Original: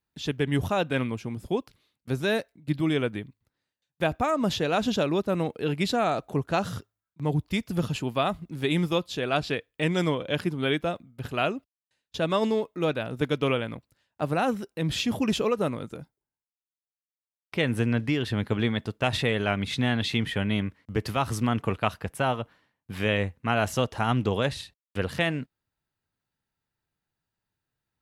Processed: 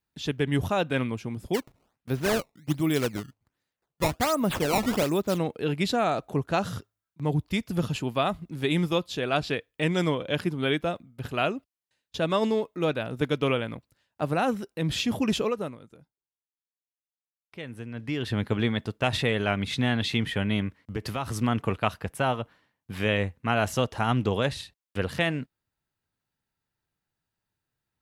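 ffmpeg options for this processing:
ffmpeg -i in.wav -filter_complex "[0:a]asplit=3[link_01][link_02][link_03];[link_01]afade=type=out:start_time=1.53:duration=0.02[link_04];[link_02]acrusher=samples=16:mix=1:aa=0.000001:lfo=1:lforange=25.6:lforate=1.3,afade=type=in:start_time=1.53:duration=0.02,afade=type=out:start_time=5.37:duration=0.02[link_05];[link_03]afade=type=in:start_time=5.37:duration=0.02[link_06];[link_04][link_05][link_06]amix=inputs=3:normalize=0,asettb=1/sr,asplit=3[link_07][link_08][link_09];[link_07]atrim=end=20.834[link_10];[link_08]atrim=start=20.83:end=21.36,asetpts=PTS-STARTPTS,afade=type=in:duration=0.004:curve=qsin,afade=type=out:start_time=0.526:duration=0.004:curve=qsin,acompressor=threshold=-27dB:ratio=3:attack=3.2:release=140:knee=1:detection=peak[link_11];[link_09]atrim=start=21.356[link_12];[link_10][link_11]acrossfade=duration=0.004:curve1=hsin:curve2=qsin[link_13];[link_13][link_12]acrossfade=duration=0.004:curve1=qsin:curve2=hsin,asplit=3[link_14][link_15][link_16];[link_14]atrim=end=15.78,asetpts=PTS-STARTPTS,afade=type=out:start_time=15.38:duration=0.4:silence=0.211349[link_17];[link_15]atrim=start=15.78:end=17.93,asetpts=PTS-STARTPTS,volume=-13.5dB[link_18];[link_16]atrim=start=17.93,asetpts=PTS-STARTPTS,afade=type=in:duration=0.4:silence=0.211349[link_19];[link_17][link_18][link_19]concat=n=3:v=0:a=1" out.wav

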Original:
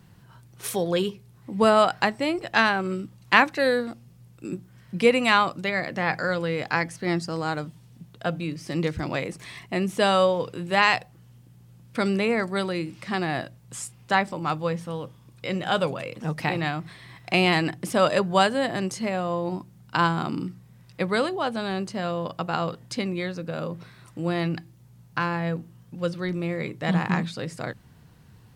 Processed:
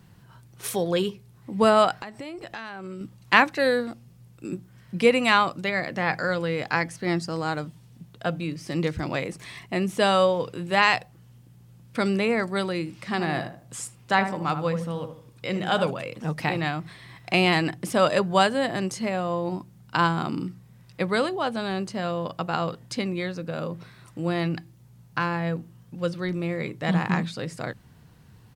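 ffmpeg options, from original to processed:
ffmpeg -i in.wav -filter_complex "[0:a]asettb=1/sr,asplit=3[link_01][link_02][link_03];[link_01]atrim=end=1.994[link_04];[link_02]atrim=start=1.99:end=3.01,asetpts=PTS-STARTPTS,afade=type=in:duration=0.004:curve=qsin,afade=type=out:start_time=1.016:duration=0.004:curve=qsin,acompressor=threshold=-33dB:ratio=8:attack=3.2:release=140:knee=1:detection=peak[link_05];[link_03]atrim=start=3.006[link_06];[link_04][link_05]acrossfade=duration=0.004:curve1=hsin:curve2=qsin[link_07];[link_07][link_06]acrossfade=duration=0.004:curve1=qsin:curve2=hsin,asplit=3[link_08][link_09][link_10];[link_08]afade=type=out:start_time=13.16:duration=0.02[link_11];[link_09]asplit=2[link_12][link_13];[link_13]adelay=77,lowpass=frequency=1200:poles=1,volume=-7dB,asplit=2[link_14][link_15];[link_15]adelay=77,lowpass=frequency=1200:poles=1,volume=0.38,asplit=2[link_16][link_17];[link_17]adelay=77,lowpass=frequency=1200:poles=1,volume=0.38,asplit=2[link_18][link_19];[link_19]adelay=77,lowpass=frequency=1200:poles=1,volume=0.38[link_20];[link_12][link_14][link_16][link_18][link_20]amix=inputs=5:normalize=0,afade=type=in:start_time=13.16:duration=0.02,afade=type=out:start_time=15.89:duration=0.02[link_21];[link_10]afade=type=in:start_time=15.89:duration=0.02[link_22];[link_11][link_21][link_22]amix=inputs=3:normalize=0" out.wav

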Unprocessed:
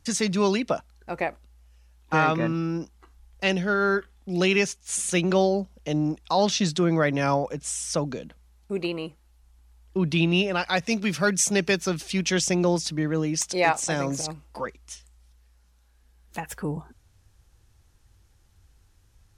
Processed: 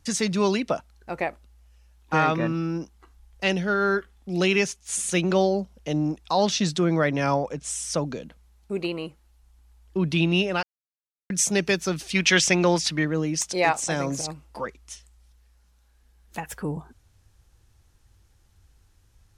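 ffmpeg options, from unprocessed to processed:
ffmpeg -i in.wav -filter_complex "[0:a]asettb=1/sr,asplit=3[link_01][link_02][link_03];[link_01]atrim=end=7.074[link_04];[link_02]atrim=start=7.07:end=7.7,asetpts=PTS-STARTPTS,afade=type=in:duration=0.004:curve=qsin,afade=type=out:start_time=0.626:duration=0.004:curve=qsin,lowpass=9500[link_05];[link_03]atrim=start=7.696[link_06];[link_04][link_05]acrossfade=duration=0.004:curve1=hsin:curve2=qsin[link_07];[link_07][link_06]acrossfade=duration=0.004:curve1=qsin:curve2=hsin,asettb=1/sr,asplit=3[link_08][link_09][link_10];[link_08]atrim=end=12.154[link_11];[link_09]atrim=start=12.15:end=13.05,asetpts=PTS-STARTPTS,afade=type=in:duration=0.004:curve=qsin,afade=type=out:start_time=0.896:duration=0.004:curve=qsin,equalizer=frequency=2100:width_type=o:width=2.4:gain=10.5[link_12];[link_10]atrim=start=13.046[link_13];[link_11][link_12]acrossfade=duration=0.004:curve1=hsin:curve2=qsin[link_14];[link_14][link_13]acrossfade=duration=0.004:curve1=qsin:curve2=hsin,asplit=3[link_15][link_16][link_17];[link_15]atrim=end=10.63,asetpts=PTS-STARTPTS,afade=type=out:start_time=10.626:duration=0.004:curve=hsin[link_18];[link_16]atrim=start=10.63:end=11.3,asetpts=PTS-STARTPTS,volume=0[link_19];[link_17]atrim=start=11.3,asetpts=PTS-STARTPTS,afade=type=in:duration=0.004:curve=hsin[link_20];[link_18][link_19][link_20]concat=n=3:v=0:a=1" out.wav

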